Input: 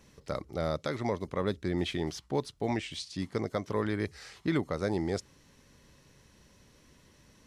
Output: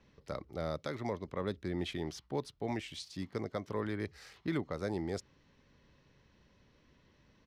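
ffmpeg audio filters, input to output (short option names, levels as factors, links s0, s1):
-filter_complex "[0:a]acrossover=split=420|5000[s0][s1][s2];[s2]aeval=exprs='val(0)*gte(abs(val(0)),0.00141)':c=same[s3];[s0][s1][s3]amix=inputs=3:normalize=0,aresample=32000,aresample=44100,volume=0.531"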